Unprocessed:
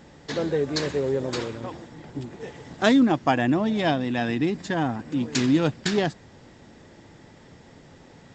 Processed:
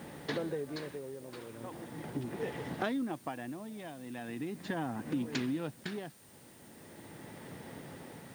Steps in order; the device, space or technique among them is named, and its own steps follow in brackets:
medium wave at night (band-pass filter 110–3,500 Hz; downward compressor 6 to 1, threshold −35 dBFS, peak gain reduction 19 dB; amplitude tremolo 0.39 Hz, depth 72%; steady tone 9,000 Hz −67 dBFS; white noise bed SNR 22 dB)
level +3 dB

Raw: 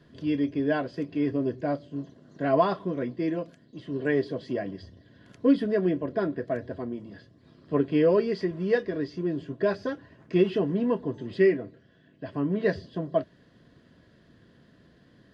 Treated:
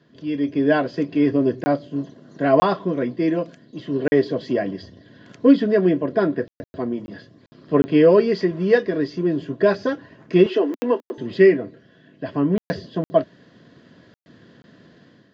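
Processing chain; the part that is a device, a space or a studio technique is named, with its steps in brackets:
call with lost packets (high-pass filter 130 Hz 12 dB per octave; downsampling to 16,000 Hz; automatic gain control gain up to 9 dB; dropped packets of 20 ms bursts)
0:10.46–0:11.18: Butterworth high-pass 260 Hz 48 dB per octave

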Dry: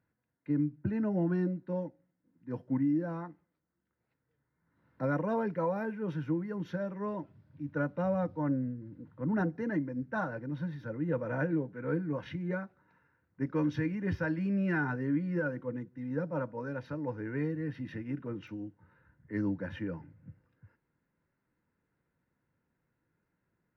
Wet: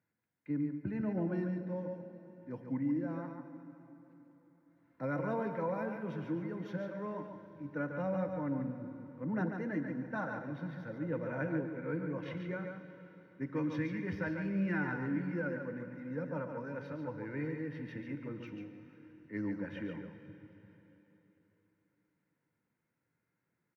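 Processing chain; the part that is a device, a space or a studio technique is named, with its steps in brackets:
PA in a hall (high-pass filter 110 Hz; parametric band 2,200 Hz +7 dB 0.29 octaves; single-tap delay 142 ms −6 dB; convolution reverb RT60 3.9 s, pre-delay 38 ms, DRR 9.5 dB)
level −5 dB

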